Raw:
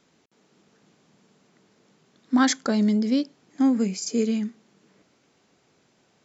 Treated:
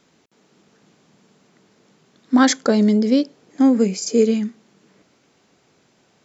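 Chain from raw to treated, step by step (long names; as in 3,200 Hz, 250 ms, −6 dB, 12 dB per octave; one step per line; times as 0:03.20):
0:02.34–0:04.34: parametric band 480 Hz +7 dB 0.73 octaves
level +4.5 dB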